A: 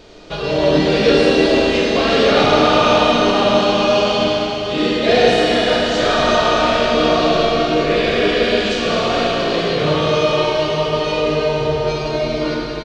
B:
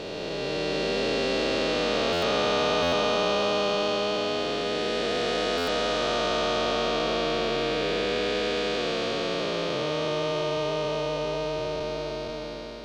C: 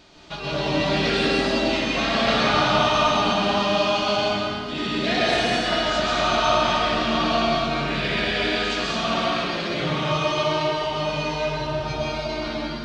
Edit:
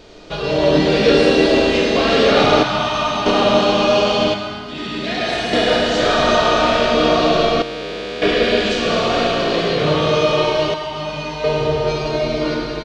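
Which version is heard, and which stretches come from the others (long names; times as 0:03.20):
A
0:02.63–0:03.26: punch in from C
0:04.34–0:05.53: punch in from C
0:07.62–0:08.22: punch in from B
0:10.74–0:11.44: punch in from C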